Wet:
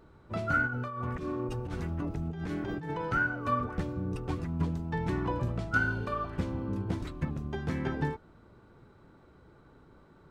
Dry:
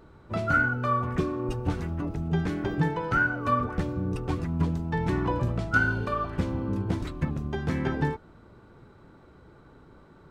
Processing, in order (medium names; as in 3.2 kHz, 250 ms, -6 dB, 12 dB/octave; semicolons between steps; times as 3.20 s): 0.67–3.11 s: compressor with a negative ratio -30 dBFS, ratio -1; trim -4.5 dB